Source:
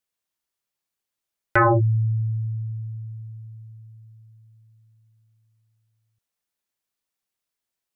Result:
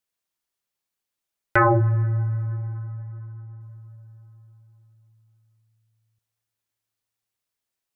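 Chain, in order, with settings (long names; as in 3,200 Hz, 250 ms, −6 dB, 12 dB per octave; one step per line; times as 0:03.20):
0:02.47–0:03.61: low-pass filter 1,400 Hz
dense smooth reverb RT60 4.1 s, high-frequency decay 0.6×, DRR 18 dB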